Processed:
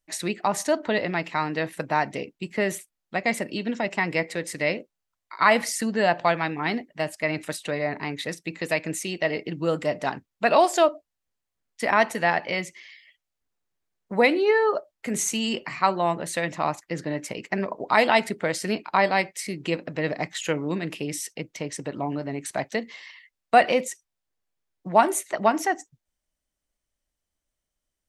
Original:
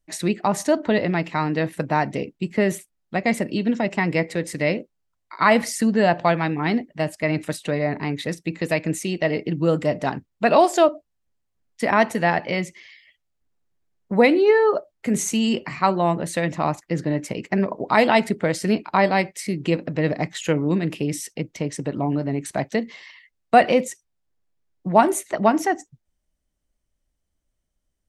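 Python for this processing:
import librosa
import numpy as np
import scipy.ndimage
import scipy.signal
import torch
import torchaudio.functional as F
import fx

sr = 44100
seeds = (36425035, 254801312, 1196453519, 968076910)

y = fx.low_shelf(x, sr, hz=410.0, db=-10.0)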